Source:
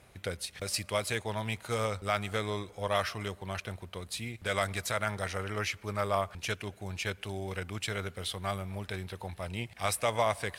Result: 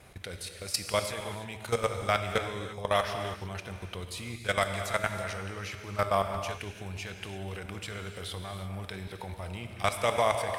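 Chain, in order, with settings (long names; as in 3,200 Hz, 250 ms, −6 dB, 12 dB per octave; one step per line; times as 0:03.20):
output level in coarse steps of 15 dB
reverb whose tail is shaped and stops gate 370 ms flat, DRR 5.5 dB
level +5.5 dB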